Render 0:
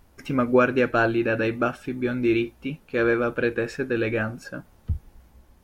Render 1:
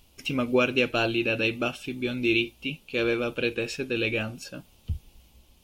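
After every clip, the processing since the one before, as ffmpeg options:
ffmpeg -i in.wav -af "highshelf=frequency=2200:width_type=q:width=3:gain=8.5,volume=-4dB" out.wav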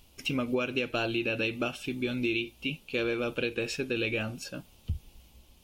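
ffmpeg -i in.wav -af "acompressor=threshold=-26dB:ratio=6" out.wav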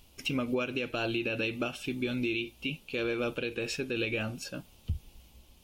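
ffmpeg -i in.wav -af "alimiter=limit=-21dB:level=0:latency=1:release=94" out.wav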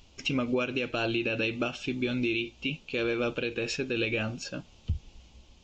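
ffmpeg -i in.wav -af "aresample=16000,aresample=44100,volume=2.5dB" out.wav

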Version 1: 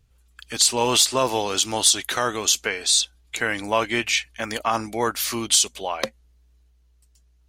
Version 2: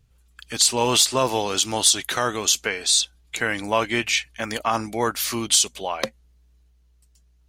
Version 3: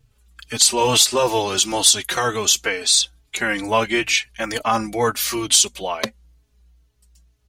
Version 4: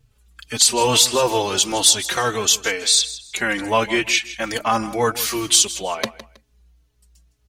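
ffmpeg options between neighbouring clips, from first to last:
ffmpeg -i in.wav -af "equalizer=frequency=150:width_type=o:width=0.89:gain=4" out.wav
ffmpeg -i in.wav -filter_complex "[0:a]asplit=2[link_01][link_02];[link_02]adelay=4,afreqshift=-2.2[link_03];[link_01][link_03]amix=inputs=2:normalize=1,volume=6dB" out.wav
ffmpeg -i in.wav -af "aecho=1:1:160|320:0.158|0.0396" out.wav

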